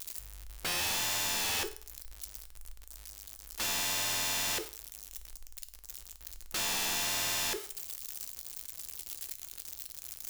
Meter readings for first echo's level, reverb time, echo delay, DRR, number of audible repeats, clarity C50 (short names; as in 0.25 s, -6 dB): none, 0.45 s, none, 10.0 dB, none, 16.0 dB